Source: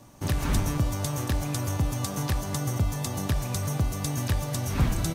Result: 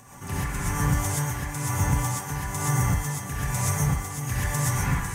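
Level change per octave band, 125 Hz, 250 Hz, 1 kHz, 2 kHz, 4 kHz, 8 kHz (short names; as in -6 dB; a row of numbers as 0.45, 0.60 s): +1.5, -0.5, +5.0, +7.0, -2.5, +5.0 dB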